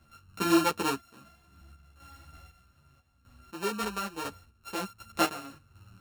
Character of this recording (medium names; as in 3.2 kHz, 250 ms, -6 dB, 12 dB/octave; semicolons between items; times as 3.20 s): a buzz of ramps at a fixed pitch in blocks of 32 samples; random-step tremolo 4 Hz, depth 80%; a shimmering, thickened sound